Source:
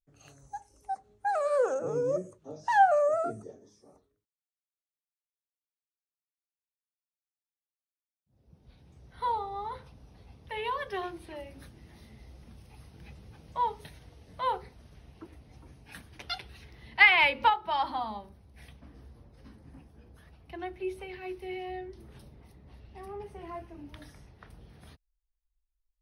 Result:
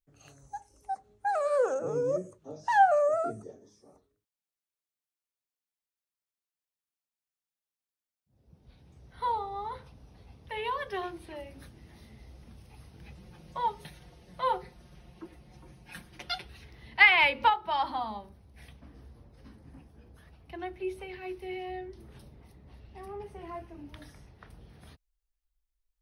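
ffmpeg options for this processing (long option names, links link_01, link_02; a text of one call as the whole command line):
ffmpeg -i in.wav -filter_complex "[0:a]asettb=1/sr,asplit=3[link_01][link_02][link_03];[link_01]atrim=end=13.174[link_04];[link_02]atrim=start=13.17:end=16.45,asetpts=PTS-STARTPTS,afade=type=in:duration=0.004:curve=qsin,afade=type=out:start_time=3.276:duration=0.004:curve=qsin,aecho=1:1:5.6:0.65,atrim=end_sample=144648[link_05];[link_03]atrim=start=16.446[link_06];[link_04][link_05]acrossfade=duration=0.004:curve1=hsin:curve2=qsin[link_07];[link_07][link_06]acrossfade=duration=0.004:curve1=qsin:curve2=hsin" out.wav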